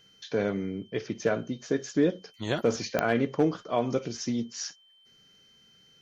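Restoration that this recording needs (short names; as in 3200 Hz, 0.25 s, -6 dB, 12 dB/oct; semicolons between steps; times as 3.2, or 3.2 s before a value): clip repair -14.5 dBFS; de-click; notch 3100 Hz, Q 30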